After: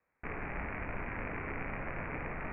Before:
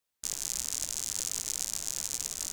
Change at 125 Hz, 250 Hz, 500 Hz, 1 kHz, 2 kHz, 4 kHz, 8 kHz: +12.5 dB, +12.5 dB, +12.5 dB, +12.0 dB, +10.5 dB, under -25 dB, under -40 dB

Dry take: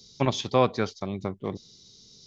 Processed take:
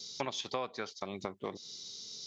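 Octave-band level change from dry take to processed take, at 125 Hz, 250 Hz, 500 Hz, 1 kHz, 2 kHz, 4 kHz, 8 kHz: -20.0 dB, -14.5 dB, -12.5 dB, -10.5 dB, -7.5 dB, -4.0 dB, no reading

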